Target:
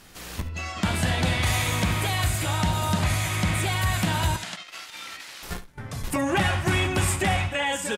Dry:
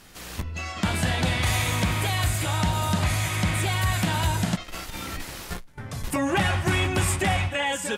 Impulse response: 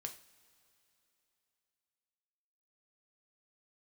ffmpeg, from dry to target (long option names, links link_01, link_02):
-filter_complex "[0:a]asettb=1/sr,asplit=3[link_01][link_02][link_03];[link_01]atrim=end=4.364[link_04];[link_02]atrim=start=4.36:end=5.43,asetpts=PTS-STARTPTS,afade=type=in:duration=0.004:curve=qsin,afade=type=out:start_time=1.066:duration=0.004:curve=qsin,bandpass=frequency=3200:width_type=q:width=0.59:csg=0[link_05];[link_03]atrim=start=5.426[link_06];[link_04][link_05]acrossfade=duration=0.004:curve1=hsin:curve2=qsin[link_07];[link_07][link_06]acrossfade=duration=0.004:curve1=qsin:curve2=hsin,asplit=2[link_08][link_09];[link_09]aecho=0:1:71:0.188[link_10];[link_08][link_10]amix=inputs=2:normalize=0"